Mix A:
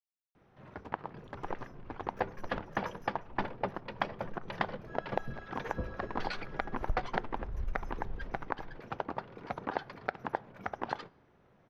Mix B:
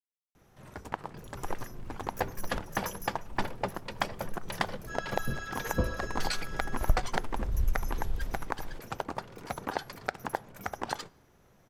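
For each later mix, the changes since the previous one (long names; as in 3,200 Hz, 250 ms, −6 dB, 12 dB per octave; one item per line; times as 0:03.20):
first sound: add low-shelf EQ 71 Hz +11.5 dB
second sound +8.5 dB
master: remove high-frequency loss of the air 290 metres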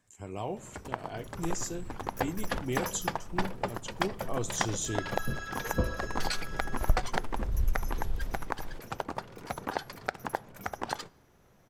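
speech: unmuted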